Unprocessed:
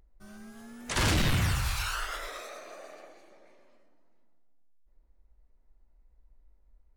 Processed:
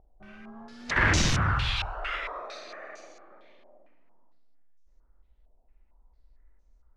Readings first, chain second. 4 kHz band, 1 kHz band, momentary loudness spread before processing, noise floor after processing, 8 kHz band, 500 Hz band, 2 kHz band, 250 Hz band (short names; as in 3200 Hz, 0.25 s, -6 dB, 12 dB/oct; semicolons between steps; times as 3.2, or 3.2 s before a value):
+2.0 dB, +4.5 dB, 22 LU, -63 dBFS, +1.0 dB, +1.5 dB, +6.5 dB, +1.0 dB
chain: flutter echo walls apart 8.5 m, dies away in 0.34 s; stepped low-pass 4.4 Hz 730–6200 Hz